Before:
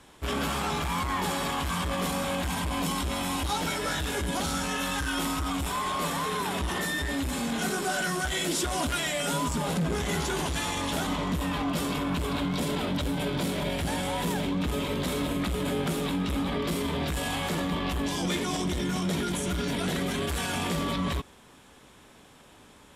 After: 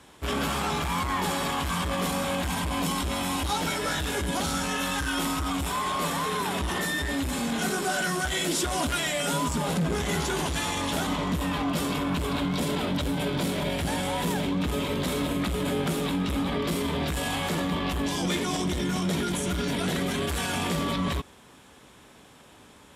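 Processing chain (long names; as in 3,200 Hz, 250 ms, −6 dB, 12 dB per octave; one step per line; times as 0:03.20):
high-pass filter 46 Hz
level +1.5 dB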